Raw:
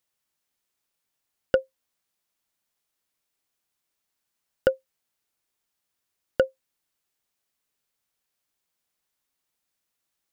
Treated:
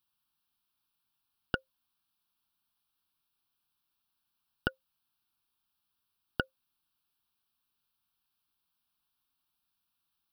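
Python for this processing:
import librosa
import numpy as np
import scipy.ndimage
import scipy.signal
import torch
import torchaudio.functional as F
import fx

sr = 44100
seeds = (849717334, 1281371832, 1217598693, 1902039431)

y = fx.fixed_phaser(x, sr, hz=2000.0, stages=6)
y = F.gain(torch.from_numpy(y), 1.0).numpy()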